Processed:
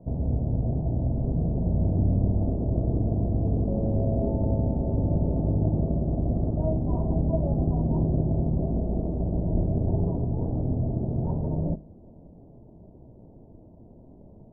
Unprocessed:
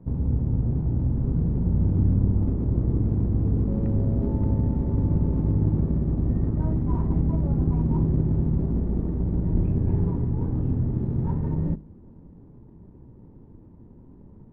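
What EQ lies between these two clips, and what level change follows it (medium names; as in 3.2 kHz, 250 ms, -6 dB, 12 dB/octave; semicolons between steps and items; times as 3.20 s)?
resonant low-pass 660 Hz, resonance Q 7.6; distance through air 170 m; -2.5 dB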